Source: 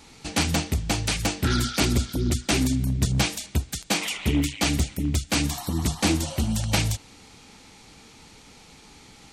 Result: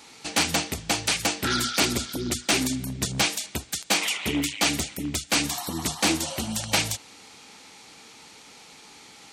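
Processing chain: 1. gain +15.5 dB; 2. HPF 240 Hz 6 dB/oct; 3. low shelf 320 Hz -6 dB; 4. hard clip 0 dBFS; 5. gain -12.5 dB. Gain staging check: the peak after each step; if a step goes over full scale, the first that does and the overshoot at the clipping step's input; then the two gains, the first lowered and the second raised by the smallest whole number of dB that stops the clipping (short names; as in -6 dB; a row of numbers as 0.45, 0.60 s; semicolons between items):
+7.5, +6.5, +6.5, 0.0, -12.5 dBFS; step 1, 6.5 dB; step 1 +8.5 dB, step 5 -5.5 dB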